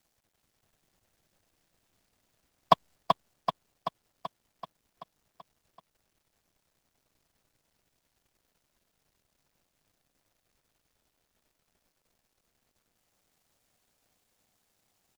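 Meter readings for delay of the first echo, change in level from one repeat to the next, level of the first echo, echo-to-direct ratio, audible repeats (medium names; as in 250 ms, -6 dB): 383 ms, -4.5 dB, -4.5 dB, -2.5 dB, 7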